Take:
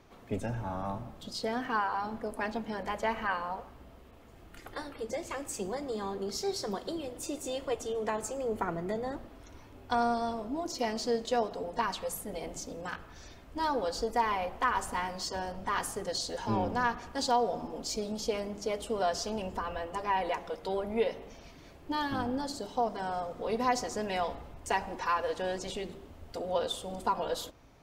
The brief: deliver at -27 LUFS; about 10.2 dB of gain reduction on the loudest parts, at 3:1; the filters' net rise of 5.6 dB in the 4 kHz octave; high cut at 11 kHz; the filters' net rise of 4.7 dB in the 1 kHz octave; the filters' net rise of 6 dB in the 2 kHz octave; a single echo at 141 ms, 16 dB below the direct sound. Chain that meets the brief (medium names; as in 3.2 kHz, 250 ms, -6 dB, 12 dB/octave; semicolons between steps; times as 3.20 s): low-pass 11 kHz; peaking EQ 1 kHz +4.5 dB; peaking EQ 2 kHz +5 dB; peaking EQ 4 kHz +5.5 dB; compression 3:1, threshold -33 dBFS; delay 141 ms -16 dB; trim +9 dB